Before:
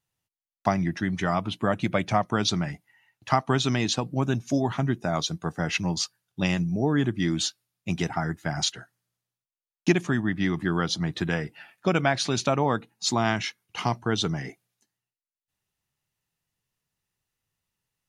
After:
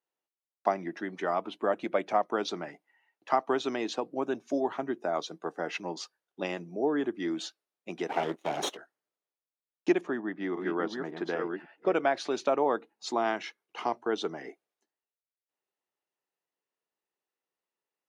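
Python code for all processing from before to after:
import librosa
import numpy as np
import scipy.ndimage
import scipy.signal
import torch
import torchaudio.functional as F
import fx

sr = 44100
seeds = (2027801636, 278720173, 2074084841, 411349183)

y = fx.chain(x, sr, fx.lower_of_two(delay_ms=0.32),
    fx.leveller(passes=2), at=(8.09, 8.77))
y = fx.chain(y, sr, fx.reverse_delay(ms=549, wet_db=-4),
    fx.high_shelf(hz=3900.0, db=-10.5), at=(10.01, 11.93))
y = scipy.signal.sosfilt(scipy.signal.butter(4, 370.0, 'highpass', fs=sr, output='sos'), y)
y = fx.tilt_eq(y, sr, slope=-4.0)
y = y * librosa.db_to_amplitude(-3.5)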